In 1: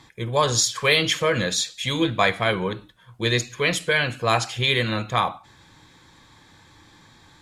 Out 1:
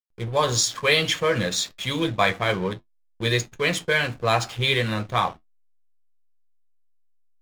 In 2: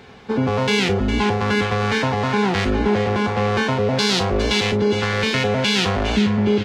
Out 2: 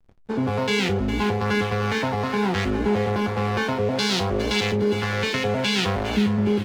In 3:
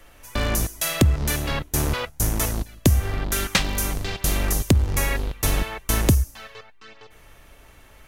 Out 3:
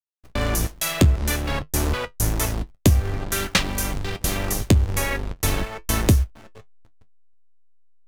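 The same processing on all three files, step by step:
backlash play -29.5 dBFS; flange 0.65 Hz, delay 9.6 ms, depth 1.9 ms, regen -55%; match loudness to -23 LUFS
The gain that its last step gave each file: +3.5, +0.5, +5.0 dB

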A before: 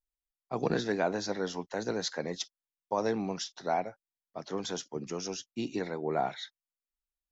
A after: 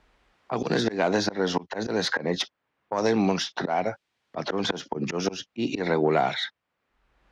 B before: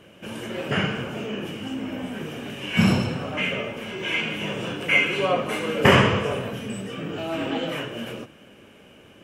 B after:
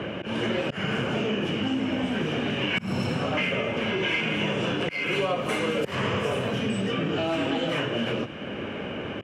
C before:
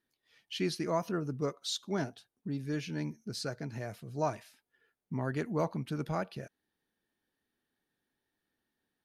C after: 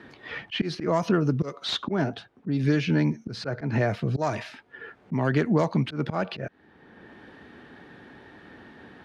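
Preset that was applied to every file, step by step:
self-modulated delay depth 0.061 ms; HPF 60 Hz; low-pass opened by the level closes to 2100 Hz, open at -20.5 dBFS; compressor 3:1, threshold -35 dBFS; auto swell 0.232 s; three-band squash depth 70%; match loudness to -27 LUFS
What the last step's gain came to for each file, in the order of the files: +18.0, +9.5, +17.5 dB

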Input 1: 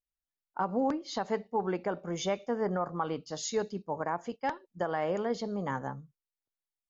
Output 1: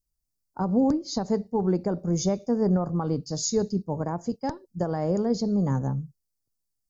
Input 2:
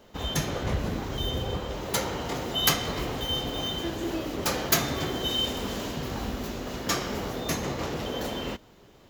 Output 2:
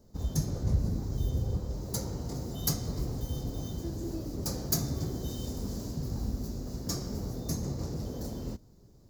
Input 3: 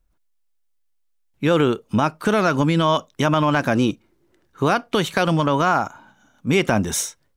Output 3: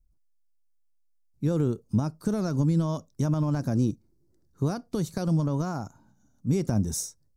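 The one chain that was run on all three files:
EQ curve 120 Hz 0 dB, 3100 Hz -29 dB, 4700 Hz -8 dB; normalise peaks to -12 dBFS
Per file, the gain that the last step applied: +16.5, +2.5, 0.0 dB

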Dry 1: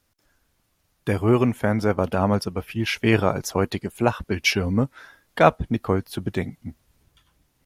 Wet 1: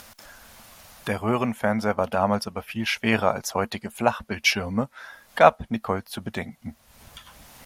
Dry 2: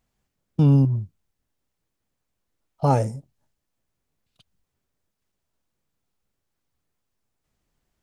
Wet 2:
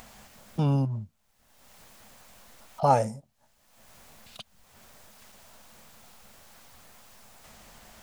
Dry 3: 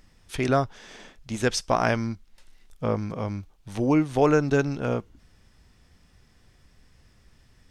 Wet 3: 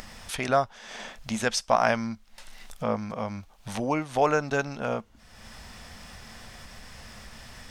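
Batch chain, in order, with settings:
resonant low shelf 470 Hz -8.5 dB, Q 1.5; upward compressor, threshold -29 dBFS; bell 220 Hz +10 dB 0.3 oct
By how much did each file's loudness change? -1.5, -6.0, -2.5 LU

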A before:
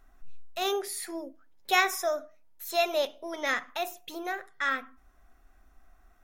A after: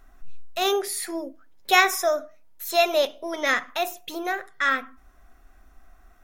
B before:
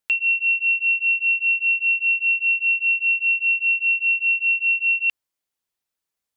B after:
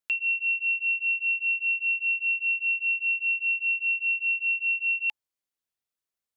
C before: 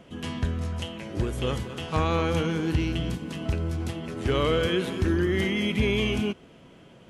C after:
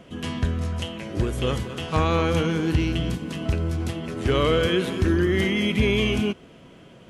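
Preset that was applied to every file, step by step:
notch 860 Hz, Q 18; match loudness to -24 LUFS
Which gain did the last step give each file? +6.5, -6.5, +3.5 dB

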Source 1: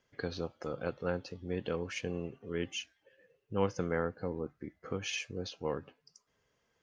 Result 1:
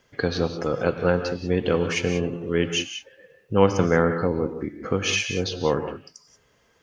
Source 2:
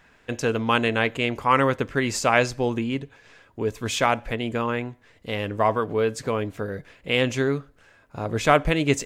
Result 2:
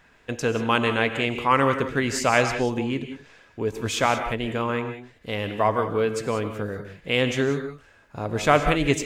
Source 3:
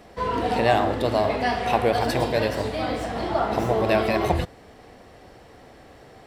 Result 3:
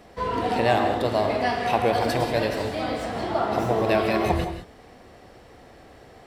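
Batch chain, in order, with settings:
non-linear reverb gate 0.21 s rising, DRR 7.5 dB; match loudness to -24 LUFS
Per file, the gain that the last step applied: +13.0, -0.5, -1.5 dB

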